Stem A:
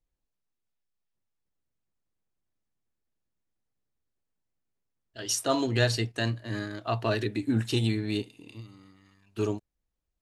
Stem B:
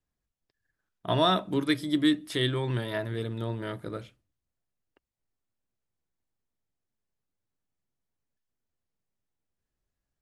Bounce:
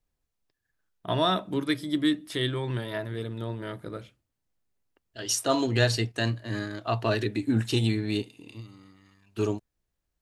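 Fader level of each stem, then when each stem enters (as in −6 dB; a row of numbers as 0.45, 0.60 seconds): +1.5, −1.0 decibels; 0.00, 0.00 seconds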